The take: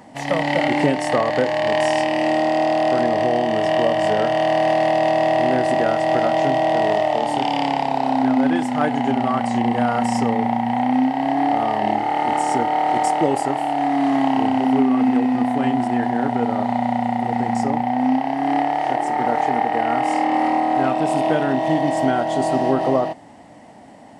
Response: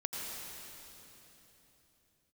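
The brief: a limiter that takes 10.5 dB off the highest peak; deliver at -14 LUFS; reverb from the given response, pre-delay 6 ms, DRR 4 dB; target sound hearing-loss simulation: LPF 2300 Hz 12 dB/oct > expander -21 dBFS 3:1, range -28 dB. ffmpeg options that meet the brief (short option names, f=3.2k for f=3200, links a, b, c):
-filter_complex "[0:a]alimiter=limit=-15.5dB:level=0:latency=1,asplit=2[a][b];[1:a]atrim=start_sample=2205,adelay=6[c];[b][c]afir=irnorm=-1:irlink=0,volume=-6.5dB[d];[a][d]amix=inputs=2:normalize=0,lowpass=2.3k,agate=range=-28dB:threshold=-21dB:ratio=3,volume=10dB"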